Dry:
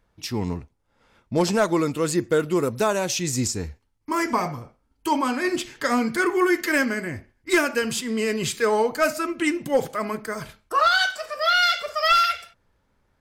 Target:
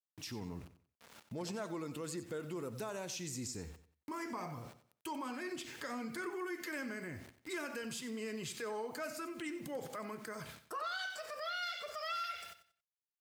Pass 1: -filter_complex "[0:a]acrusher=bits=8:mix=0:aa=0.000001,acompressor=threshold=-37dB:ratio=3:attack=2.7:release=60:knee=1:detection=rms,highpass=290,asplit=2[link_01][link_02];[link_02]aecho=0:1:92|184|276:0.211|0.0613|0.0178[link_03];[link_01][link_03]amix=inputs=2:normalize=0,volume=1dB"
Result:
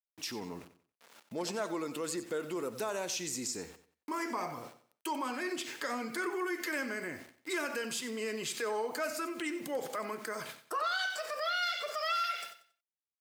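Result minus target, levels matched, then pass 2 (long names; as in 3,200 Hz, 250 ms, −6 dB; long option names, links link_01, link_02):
125 Hz band −10.5 dB; downward compressor: peak gain reduction −7 dB
-filter_complex "[0:a]acrusher=bits=8:mix=0:aa=0.000001,acompressor=threshold=-47.5dB:ratio=3:attack=2.7:release=60:knee=1:detection=rms,highpass=88,asplit=2[link_01][link_02];[link_02]aecho=0:1:92|184|276:0.211|0.0613|0.0178[link_03];[link_01][link_03]amix=inputs=2:normalize=0,volume=1dB"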